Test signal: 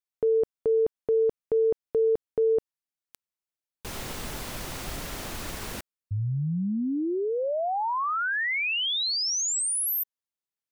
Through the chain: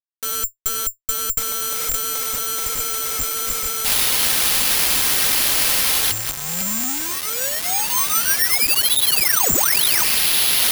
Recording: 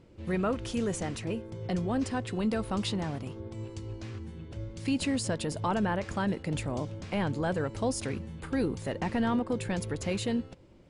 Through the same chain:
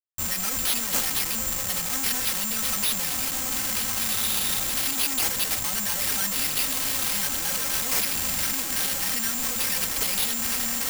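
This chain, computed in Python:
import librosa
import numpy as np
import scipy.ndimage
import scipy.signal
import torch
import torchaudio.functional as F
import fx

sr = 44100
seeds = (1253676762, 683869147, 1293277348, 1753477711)

p1 = x + fx.echo_diffused(x, sr, ms=1550, feedback_pct=43, wet_db=-9.5, dry=0)
p2 = 10.0 ** (-29.0 / 20.0) * np.tanh(p1 / 10.0 ** (-29.0 / 20.0))
p3 = fx.weighting(p2, sr, curve='D')
p4 = fx.rider(p3, sr, range_db=5, speed_s=2.0)
p5 = p3 + (p4 * librosa.db_to_amplitude(-2.0))
p6 = fx.hum_notches(p5, sr, base_hz=60, count=6)
p7 = fx.schmitt(p6, sr, flips_db=-39.5)
p8 = fx.peak_eq(p7, sr, hz=380.0, db=-14.5, octaves=1.7)
p9 = p8 + 0.86 * np.pad(p8, (int(3.8 * sr / 1000.0), 0))[:len(p8)]
p10 = (np.kron(p9[::6], np.eye(6)[0]) * 6)[:len(p9)]
y = p10 * librosa.db_to_amplitude(-3.0)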